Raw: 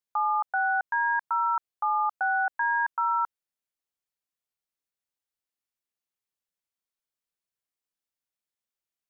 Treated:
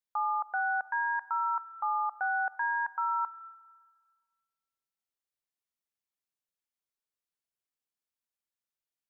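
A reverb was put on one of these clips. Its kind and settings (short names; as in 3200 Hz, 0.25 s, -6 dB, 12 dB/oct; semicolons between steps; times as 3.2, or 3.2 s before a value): digital reverb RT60 1.6 s, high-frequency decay 0.9×, pre-delay 10 ms, DRR 18 dB; gain -4.5 dB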